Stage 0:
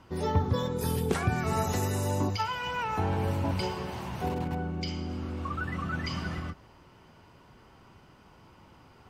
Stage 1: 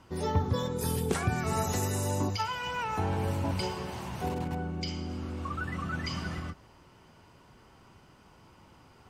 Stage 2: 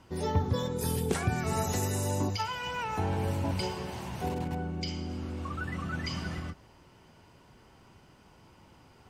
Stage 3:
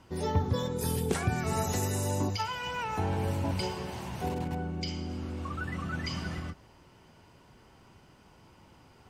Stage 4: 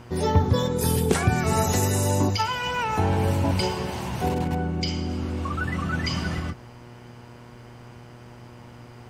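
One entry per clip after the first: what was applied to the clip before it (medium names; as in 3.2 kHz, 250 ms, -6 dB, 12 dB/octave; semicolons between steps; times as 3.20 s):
peaking EQ 8.3 kHz +5.5 dB 1.2 oct; trim -1.5 dB
peaking EQ 1.2 kHz -3.5 dB 0.49 oct
no audible change
mains buzz 120 Hz, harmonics 20, -54 dBFS -6 dB/octave; trim +8 dB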